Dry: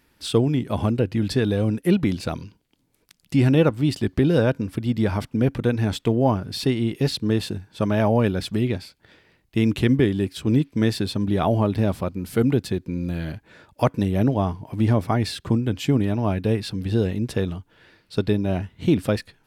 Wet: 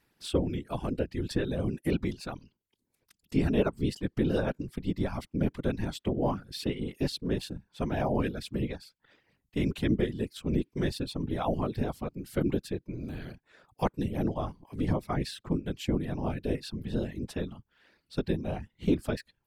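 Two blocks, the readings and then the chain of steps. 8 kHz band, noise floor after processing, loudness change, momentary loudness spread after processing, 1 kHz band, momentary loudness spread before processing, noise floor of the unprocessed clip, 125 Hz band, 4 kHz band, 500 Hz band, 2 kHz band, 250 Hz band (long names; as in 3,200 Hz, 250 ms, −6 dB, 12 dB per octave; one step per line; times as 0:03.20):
−8.5 dB, −81 dBFS, −9.5 dB, 9 LU, −8.0 dB, 8 LU, −65 dBFS, −11.0 dB, −9.0 dB, −9.0 dB, −9.0 dB, −9.5 dB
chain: reverb reduction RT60 0.57 s
random phases in short frames
level −8.5 dB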